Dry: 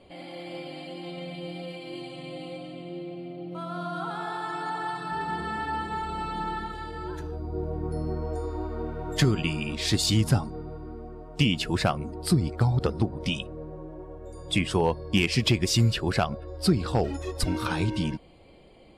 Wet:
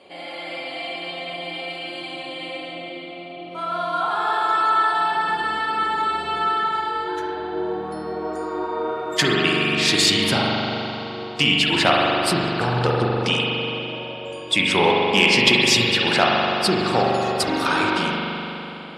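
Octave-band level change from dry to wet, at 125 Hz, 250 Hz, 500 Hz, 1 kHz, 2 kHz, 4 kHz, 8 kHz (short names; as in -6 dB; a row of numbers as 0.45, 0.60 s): -2.5, +3.5, +8.5, +11.5, +13.0, +12.0, +7.0 dB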